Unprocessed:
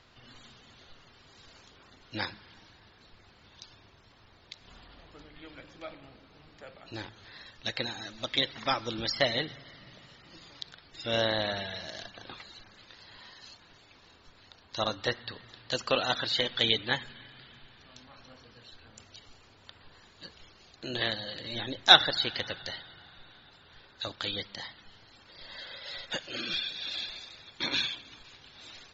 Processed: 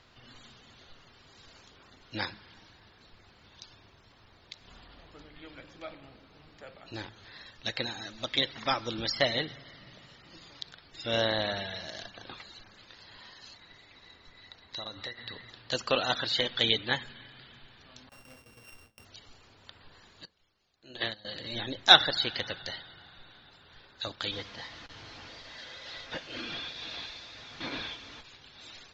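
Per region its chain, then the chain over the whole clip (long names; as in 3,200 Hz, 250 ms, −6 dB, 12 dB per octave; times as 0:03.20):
0:13.52–0:15.50: high-shelf EQ 6,800 Hz −6.5 dB + hollow resonant body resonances 2,000/3,900 Hz, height 17 dB, ringing for 40 ms + downward compressor 12 to 1, threshold −35 dBFS
0:18.09–0:19.05: samples sorted by size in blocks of 16 samples + noise gate with hold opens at −43 dBFS, closes at −46 dBFS
0:20.25–0:21.25: mains-hum notches 60/120/180/240/300/360/420/480/540 Hz + expander for the loud parts 2.5 to 1, over −40 dBFS
0:24.31–0:28.22: linear delta modulator 32 kbit/s, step −39 dBFS + high-frequency loss of the air 58 metres + notch comb filter 190 Hz
whole clip: no processing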